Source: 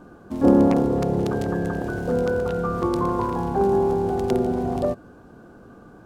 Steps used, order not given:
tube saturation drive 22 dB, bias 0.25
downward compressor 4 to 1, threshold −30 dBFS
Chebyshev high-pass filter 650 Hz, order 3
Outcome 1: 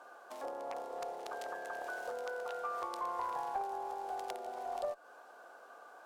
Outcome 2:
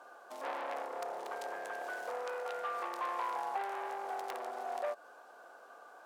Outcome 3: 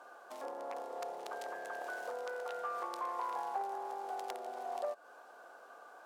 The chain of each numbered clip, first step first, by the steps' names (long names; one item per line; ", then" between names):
downward compressor, then Chebyshev high-pass filter, then tube saturation
tube saturation, then downward compressor, then Chebyshev high-pass filter
downward compressor, then tube saturation, then Chebyshev high-pass filter